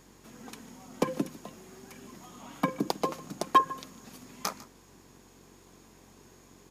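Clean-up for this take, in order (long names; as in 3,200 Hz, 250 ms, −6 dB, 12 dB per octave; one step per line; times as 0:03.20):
clipped peaks rebuilt −13 dBFS
hum removal 46.2 Hz, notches 11
echo removal 150 ms −19.5 dB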